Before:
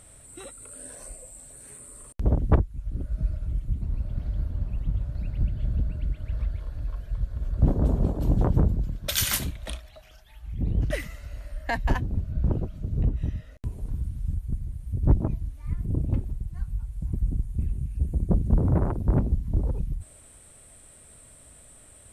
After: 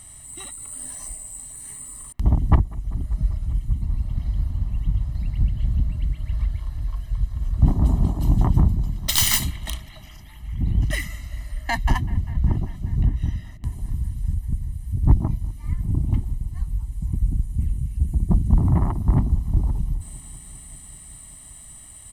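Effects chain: tracing distortion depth 0.099 ms; high shelf 2600 Hz +8 dB; comb 1 ms, depth 94%; on a send: analogue delay 0.196 s, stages 4096, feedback 81%, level -22.5 dB; on the sum: gain -1 dB

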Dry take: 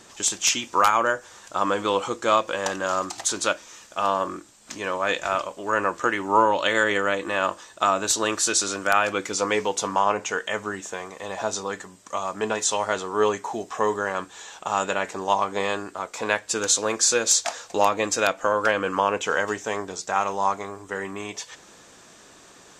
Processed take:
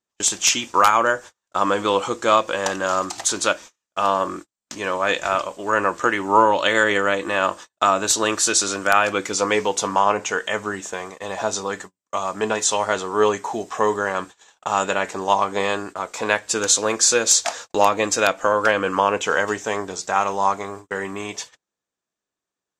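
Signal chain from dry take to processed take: gate -38 dBFS, range -41 dB; gain +3.5 dB

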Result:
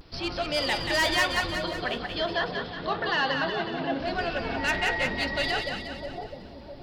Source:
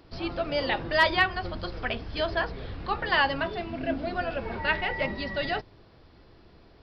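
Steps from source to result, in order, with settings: high shelf 2800 Hz +11.5 dB; vibrato 0.55 Hz 42 cents; soft clip -20 dBFS, distortion -9 dB; 1.56–4 speaker cabinet 160–4300 Hz, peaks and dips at 170 Hz +8 dB, 440 Hz +4 dB, 2400 Hz -8 dB; split-band echo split 800 Hz, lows 0.658 s, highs 0.182 s, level -5 dB

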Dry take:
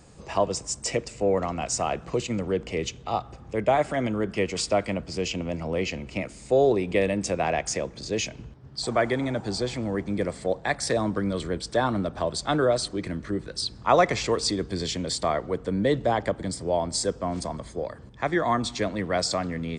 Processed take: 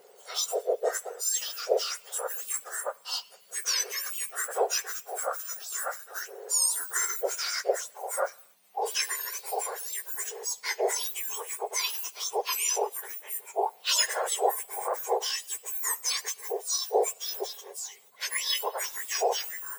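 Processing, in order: spectrum mirrored in octaves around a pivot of 1900 Hz

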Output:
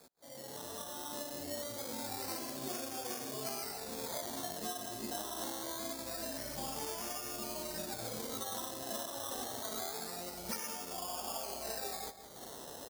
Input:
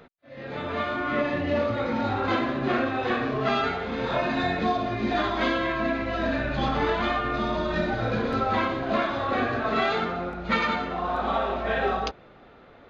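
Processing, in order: opening faded in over 2.20 s; decimation with a swept rate 15×, swing 60% 0.25 Hz; band shelf 1900 Hz -8.5 dB; upward compressor, threshold -34 dBFS; tilt +2.5 dB/oct; outdoor echo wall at 29 m, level -16 dB; compressor 3:1, threshold -37 dBFS, peak gain reduction 14.5 dB; gain -3 dB

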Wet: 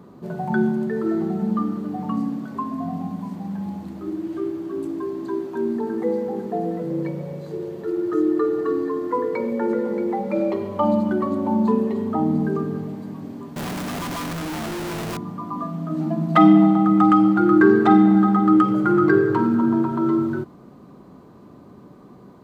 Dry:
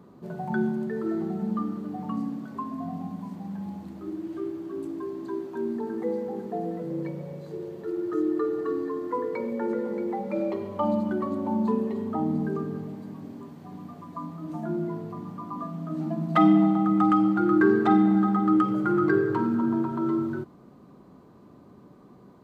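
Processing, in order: 13.56–15.17 infinite clipping; gain +6 dB

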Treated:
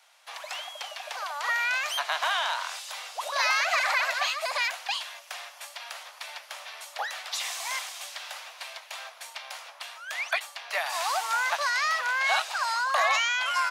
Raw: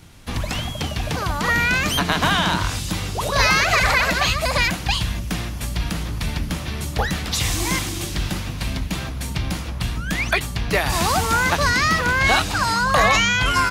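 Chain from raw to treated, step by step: steep high-pass 600 Hz 48 dB/oct; high shelf 9000 Hz -6.5 dB; gain -7 dB

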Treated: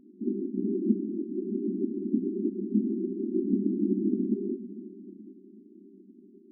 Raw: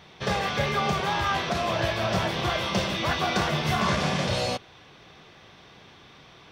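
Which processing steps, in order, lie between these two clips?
diffused feedback echo 0.472 s, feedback 45%, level -14.5 dB; whisperiser; FFT band-pass 190–400 Hz; gain +6 dB

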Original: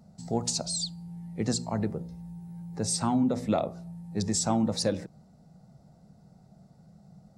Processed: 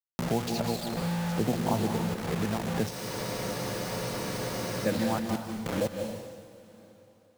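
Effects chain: reverse delay 0.536 s, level -5.5 dB; in parallel at -1 dB: compressor 16:1, threshold -40 dBFS, peak gain reduction 20 dB; on the sum: LFO low-pass sine 0.49 Hz 860–2800 Hz; requantised 6-bit, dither none; on a send at -6.5 dB: reverb, pre-delay 0.148 s; on the sum: spectral freeze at 2.92, 1.95 s; three-band squash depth 70%

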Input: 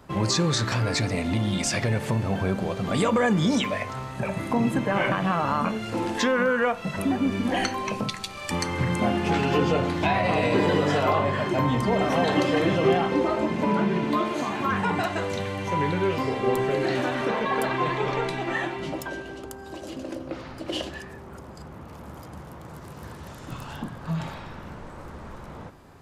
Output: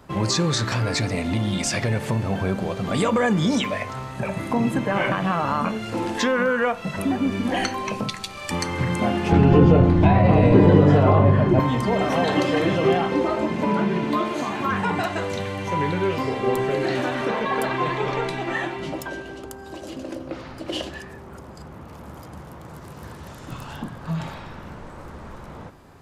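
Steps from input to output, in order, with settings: 9.32–11.6 tilt -4 dB/oct; gain +1.5 dB

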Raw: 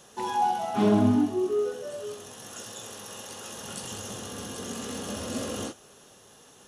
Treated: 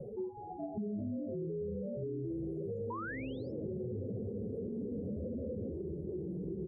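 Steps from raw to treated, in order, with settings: spectral contrast raised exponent 2.2; compressor 2.5:1, threshold -28 dBFS, peak gain reduction 7 dB; comb 1.6 ms, depth 69%; echoes that change speed 0.368 s, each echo -4 st, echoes 3, each echo -6 dB; inverse Chebyshev band-stop 1400–3600 Hz, stop band 80 dB; painted sound rise, 2.9–3.52, 920–5500 Hz -42 dBFS; band shelf 810 Hz +10 dB 2.6 oct; limiter -33.5 dBFS, peak gain reduction 14.5 dB; air absorption 450 m; three-band squash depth 70%; gain +2 dB

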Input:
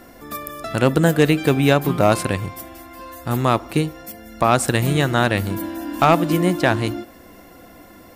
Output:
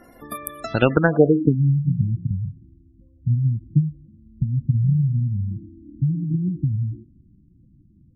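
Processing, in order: transient shaper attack +8 dB, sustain +4 dB; low-pass sweep 11000 Hz -> 140 Hz, 0.58–1.61; spectral gate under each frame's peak -20 dB strong; gain -5.5 dB

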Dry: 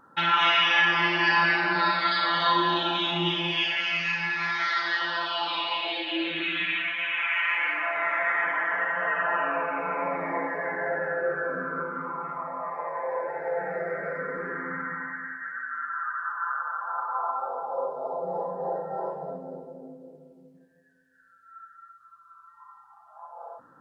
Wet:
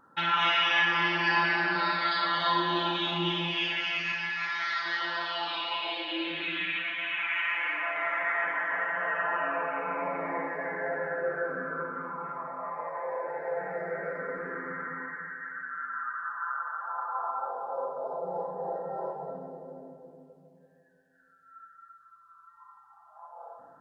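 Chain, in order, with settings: 4.12–4.86 low shelf 410 Hz -12 dB; echo with dull and thin repeats by turns 0.169 s, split 1000 Hz, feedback 65%, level -8 dB; gain -4 dB

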